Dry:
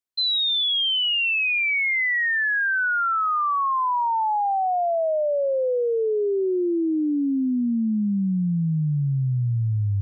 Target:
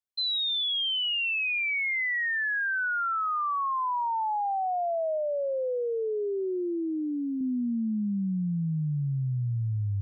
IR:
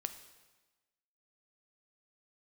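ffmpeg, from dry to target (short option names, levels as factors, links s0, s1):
-filter_complex "[0:a]asettb=1/sr,asplit=3[s0][s1][s2];[s0]atrim=end=5.174[s3];[s1]atrim=start=5.17:end=7.41,asetpts=PTS-STARTPTS,afade=t=in:d=0.004:c=qsin,afade=t=out:st=2.236:d=0.004:c=qsin,lowshelf=f=140:g=-10[s4];[s2]atrim=start=7.406[s5];[s3][s4]acrossfade=d=0.004:c1=hsin:c2=qsin[s6];[s6][s5]acrossfade=d=0.004:c1=qsin:c2=hsin,volume=0.501"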